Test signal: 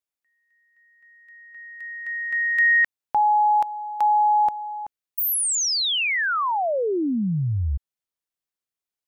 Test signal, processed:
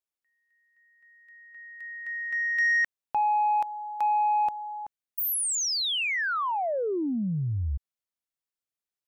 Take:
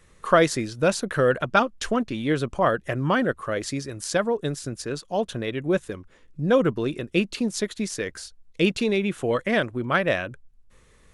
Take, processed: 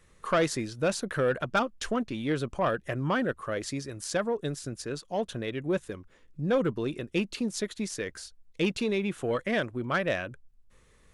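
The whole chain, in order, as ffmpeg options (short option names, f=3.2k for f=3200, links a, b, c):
-af "asoftclip=type=tanh:threshold=-13dB,volume=-4.5dB"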